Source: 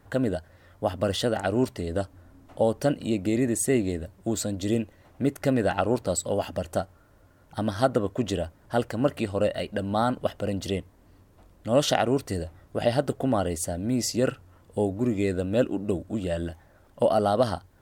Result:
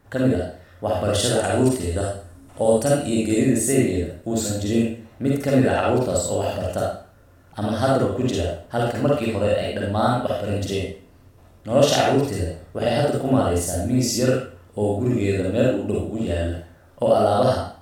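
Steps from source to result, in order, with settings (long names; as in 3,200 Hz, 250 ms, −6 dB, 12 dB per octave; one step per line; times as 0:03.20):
0:01.15–0:03.38: parametric band 9,100 Hz +12.5 dB 0.79 octaves
convolution reverb RT60 0.45 s, pre-delay 41 ms, DRR −4 dB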